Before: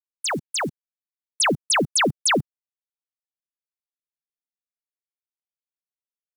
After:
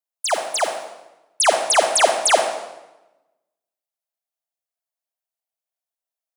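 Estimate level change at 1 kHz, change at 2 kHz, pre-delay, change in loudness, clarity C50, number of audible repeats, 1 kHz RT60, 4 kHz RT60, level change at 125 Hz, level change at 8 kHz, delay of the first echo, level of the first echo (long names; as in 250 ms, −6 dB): +7.5 dB, +1.5 dB, 33 ms, +3.5 dB, 6.0 dB, no echo audible, 0.95 s, 0.85 s, below −20 dB, +4.0 dB, no echo audible, no echo audible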